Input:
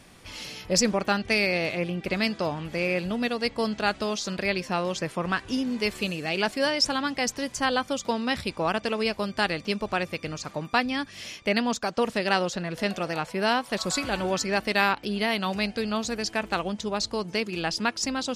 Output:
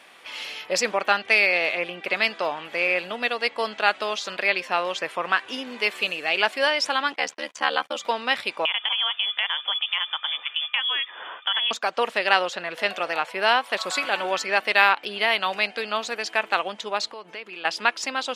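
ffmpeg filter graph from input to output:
ffmpeg -i in.wav -filter_complex "[0:a]asettb=1/sr,asplit=3[link_01][link_02][link_03];[link_01]atrim=end=7.124[link_04];[link_02]atrim=start=7.12:end=7.96,asetpts=PTS-STARTPTS,afade=type=in:duration=0.004:curve=qsin,afade=type=out:start_time=0.836:duration=0.004:curve=qsin,acrossover=split=8800[link_05][link_06];[link_06]acompressor=threshold=-58dB:ratio=4:attack=1:release=60[link_07];[link_05][link_07]amix=inputs=2:normalize=0,agate=range=-37dB:threshold=-40dB:ratio=16:release=100:detection=peak,aeval=exprs='val(0)*sin(2*PI*37*n/s)':channel_layout=same[link_08];[link_03]atrim=start=7.956[link_09];[link_04][link_08]acrossfade=duration=0.004:curve1=hsin:curve2=qsin[link_10];[link_10][link_09]acrossfade=duration=0.004:curve1=qsin:curve2=hsin,asettb=1/sr,asplit=3[link_11][link_12][link_13];[link_11]atrim=end=8.654[link_14];[link_12]atrim=start=8.65:end=11.71,asetpts=PTS-STARTPTS,afade=type=in:duration=0.004:curve=qsin,afade=type=out:start_time=3.056:duration=0.004:curve=qsin,lowpass=frequency=3100:width_type=q:width=0.5098,lowpass=frequency=3100:width_type=q:width=0.6013,lowpass=frequency=3100:width_type=q:width=0.9,lowpass=frequency=3100:width_type=q:width=2.563,afreqshift=-3600,acompressor=threshold=-27dB:ratio=4:attack=3.2:release=140:knee=1:detection=peak[link_15];[link_13]atrim=start=11.706[link_16];[link_14][link_15]acrossfade=duration=0.004:curve1=hsin:curve2=qsin[link_17];[link_17][link_16]acrossfade=duration=0.004:curve1=qsin:curve2=hsin,asettb=1/sr,asplit=3[link_18][link_19][link_20];[link_18]atrim=end=17.114[link_21];[link_19]atrim=start=17.11:end=17.65,asetpts=PTS-STARTPTS,afade=type=in:duration=0.004:curve=qsin,afade=type=out:start_time=0.536:duration=0.004:curve=qsin,bass=frequency=250:gain=-1,treble=frequency=4000:gain=-7,acompressor=threshold=-34dB:ratio=10:attack=3.2:release=140:knee=1:detection=peak[link_22];[link_20]atrim=start=17.646[link_23];[link_21][link_22]acrossfade=duration=0.004:curve1=hsin:curve2=qsin[link_24];[link_24][link_23]acrossfade=duration=0.004:curve1=qsin:curve2=hsin,highpass=610,highshelf=frequency=4100:width_type=q:width=1.5:gain=-7,volume=5.5dB" out.wav

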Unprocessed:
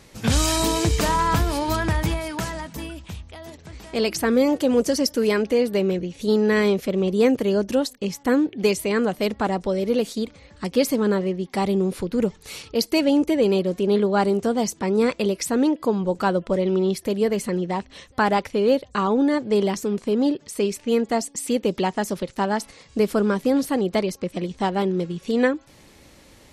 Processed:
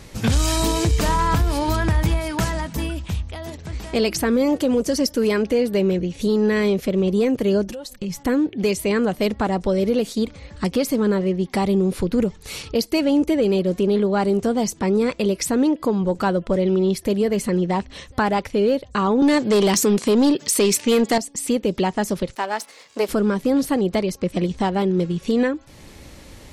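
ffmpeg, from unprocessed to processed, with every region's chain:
ffmpeg -i in.wav -filter_complex "[0:a]asettb=1/sr,asplit=3[link_01][link_02][link_03];[link_01]atrim=end=7.664[link_04];[link_02]atrim=start=7.66:end=8.2,asetpts=PTS-STARTPTS,afade=type=in:duration=0.004:curve=qsin,afade=type=out:start_time=0.536:duration=0.004:curve=qsin,asubboost=boost=9.5:cutoff=200,acompressor=threshold=-33dB:ratio=10:attack=3.2:release=140:knee=1:detection=peak,aecho=1:1:5.6:0.56,atrim=end_sample=23814[link_05];[link_03]atrim=start=8.196[link_06];[link_04][link_05]acrossfade=duration=0.004:curve1=hsin:curve2=qsin[link_07];[link_07][link_06]acrossfade=duration=0.004:curve1=qsin:curve2=hsin,asettb=1/sr,asplit=3[link_08][link_09][link_10];[link_08]atrim=end=19.224[link_11];[link_09]atrim=start=19.22:end=21.18,asetpts=PTS-STARTPTS,afade=type=in:duration=0.004:curve=qsin,afade=type=out:start_time=1.956:duration=0.004:curve=qsin,highpass=150,highshelf=frequency=2200:gain=9.5,aeval=exprs='0.376*sin(PI/2*1.58*val(0)/0.376)':channel_layout=same[link_12];[link_10]atrim=start=21.176[link_13];[link_11][link_12]acrossfade=duration=0.004:curve1=hsin:curve2=qsin[link_14];[link_14][link_13]acrossfade=duration=0.004:curve1=qsin:curve2=hsin,asettb=1/sr,asplit=3[link_15][link_16][link_17];[link_15]atrim=end=22.354[link_18];[link_16]atrim=start=22.35:end=23.09,asetpts=PTS-STARTPTS,afade=type=in:duration=0.004:curve=qsin,afade=type=out:start_time=0.736:duration=0.004:curve=qsin,aeval=exprs='if(lt(val(0),0),0.447*val(0),val(0))':channel_layout=same,highpass=470[link_19];[link_17]atrim=start=23.086[link_20];[link_18][link_19]acrossfade=duration=0.004:curve1=hsin:curve2=qsin[link_21];[link_21][link_20]acrossfade=duration=0.004:curve1=qsin:curve2=hsin,lowshelf=frequency=120:gain=8,acontrast=35,alimiter=limit=-11dB:level=0:latency=1:release=450" out.wav

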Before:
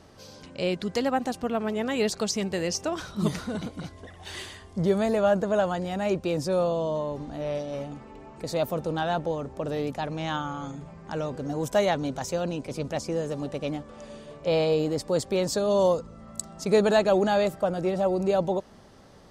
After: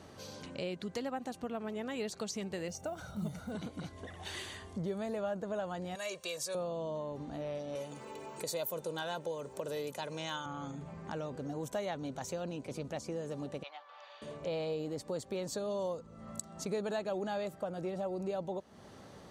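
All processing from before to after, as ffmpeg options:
ffmpeg -i in.wav -filter_complex "[0:a]asettb=1/sr,asplit=3[link_01][link_02][link_03];[link_01]atrim=end=2.684[link_04];[link_02]atrim=start=2.68:end=3.52,asetpts=PTS-STARTPTS,afade=type=in:duration=0.004:curve=qsin,afade=type=out:start_time=0.836:duration=0.004:curve=qsin,equalizer=frequency=3300:width=0.39:gain=-9,acrusher=bits=8:mode=log:mix=0:aa=0.000001,aecho=1:1:1.4:0.61,atrim=end_sample=37044[link_05];[link_03]atrim=start=3.516[link_06];[link_04][link_05]acrossfade=duration=0.004:curve1=hsin:curve2=qsin[link_07];[link_07][link_06]acrossfade=duration=0.004:curve1=qsin:curve2=hsin,asettb=1/sr,asplit=3[link_08][link_09][link_10];[link_08]atrim=end=5.954[link_11];[link_09]atrim=start=5.95:end=6.55,asetpts=PTS-STARTPTS,afade=type=in:duration=0.004:curve=qsin,afade=type=out:start_time=0.596:duration=0.004:curve=qsin,highpass=frequency=1200:poles=1,highshelf=frequency=3100:gain=12,aecho=1:1:1.8:0.71,atrim=end_sample=26460[link_12];[link_10]atrim=start=6.546[link_13];[link_11][link_12]acrossfade=duration=0.004:curve1=hsin:curve2=qsin[link_14];[link_14][link_13]acrossfade=duration=0.004:curve1=qsin:curve2=hsin,asettb=1/sr,asplit=3[link_15][link_16][link_17];[link_15]atrim=end=7.754[link_18];[link_16]atrim=start=7.75:end=10.46,asetpts=PTS-STARTPTS,afade=type=in:duration=0.004:curve=qsin,afade=type=out:start_time=2.706:duration=0.004:curve=qsin,highpass=160,aemphasis=mode=production:type=75kf,aecho=1:1:2:0.48,atrim=end_sample=119511[link_19];[link_17]atrim=start=10.456[link_20];[link_18][link_19]acrossfade=duration=0.004:curve1=hsin:curve2=qsin[link_21];[link_21][link_20]acrossfade=duration=0.004:curve1=qsin:curve2=hsin,asettb=1/sr,asplit=3[link_22][link_23][link_24];[link_22]atrim=end=13.634[link_25];[link_23]atrim=start=13.63:end=14.22,asetpts=PTS-STARTPTS,afade=type=in:duration=0.004:curve=qsin,afade=type=out:start_time=0.586:duration=0.004:curve=qsin,asuperpass=centerf=1900:order=8:qfactor=0.51,equalizer=frequency=1900:width_type=o:width=2:gain=-3[link_26];[link_24]atrim=start=14.216[link_27];[link_25][link_26]acrossfade=duration=0.004:curve1=hsin:curve2=qsin[link_28];[link_28][link_27]acrossfade=duration=0.004:curve1=qsin:curve2=hsin,bandreject=frequency=5100:width=11,acompressor=threshold=-41dB:ratio=2.5,highpass=70" out.wav

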